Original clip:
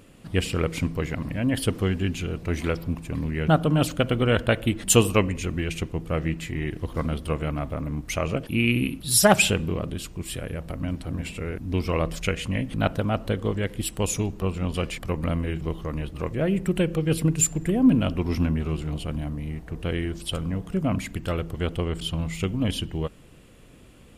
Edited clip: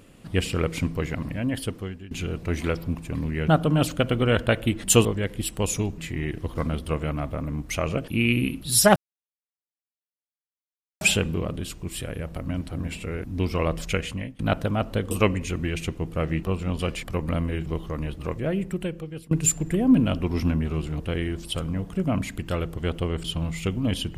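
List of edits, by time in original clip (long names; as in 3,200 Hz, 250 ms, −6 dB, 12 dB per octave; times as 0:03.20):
0:01.22–0:02.11: fade out, to −21 dB
0:05.05–0:06.37: swap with 0:13.45–0:14.38
0:09.35: splice in silence 2.05 s
0:12.37–0:12.73: fade out, to −23 dB
0:16.20–0:17.26: fade out, to −23.5 dB
0:18.95–0:19.77: remove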